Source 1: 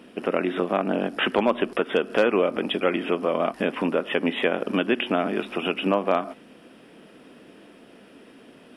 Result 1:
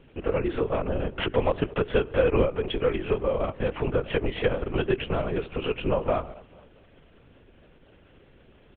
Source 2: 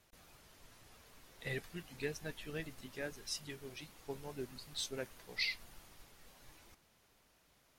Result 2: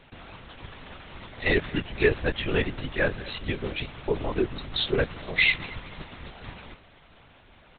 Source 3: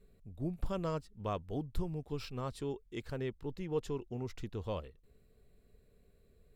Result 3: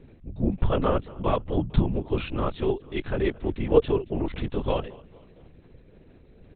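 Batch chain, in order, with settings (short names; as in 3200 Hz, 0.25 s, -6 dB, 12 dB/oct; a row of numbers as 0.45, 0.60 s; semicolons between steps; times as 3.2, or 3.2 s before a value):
dynamic EQ 430 Hz, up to +7 dB, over -37 dBFS, Q 1.7; feedback echo 0.224 s, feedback 46%, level -23 dB; LPC vocoder at 8 kHz whisper; match loudness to -27 LUFS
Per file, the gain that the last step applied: -6.0, +18.0, +12.5 dB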